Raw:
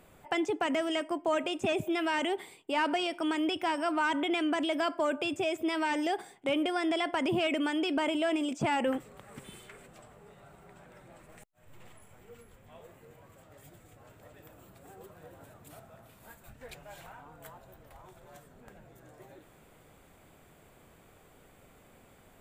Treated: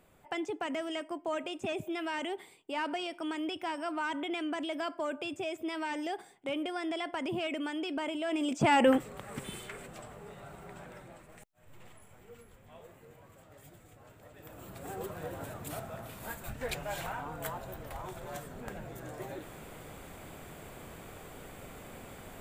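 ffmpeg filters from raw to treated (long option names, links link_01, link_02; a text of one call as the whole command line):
ffmpeg -i in.wav -af "volume=18dB,afade=type=in:start_time=8.25:duration=0.63:silence=0.251189,afade=type=out:start_time=10.84:duration=0.41:silence=0.446684,afade=type=in:start_time=14.34:duration=0.6:silence=0.266073" out.wav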